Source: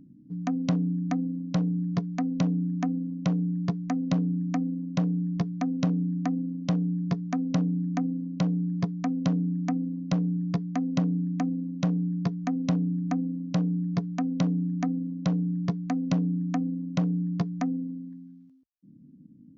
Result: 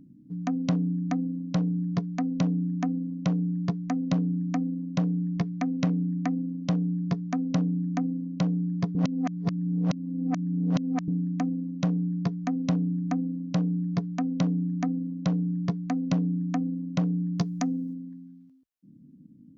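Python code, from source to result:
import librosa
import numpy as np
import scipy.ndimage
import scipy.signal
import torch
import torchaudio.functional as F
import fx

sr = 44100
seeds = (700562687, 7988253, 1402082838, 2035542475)

y = fx.peak_eq(x, sr, hz=2100.0, db=5.0, octaves=0.61, at=(5.11, 6.34))
y = fx.bass_treble(y, sr, bass_db=1, treble_db=13, at=(17.38, 17.94))
y = fx.edit(y, sr, fx.reverse_span(start_s=8.95, length_s=2.13), tone=tone)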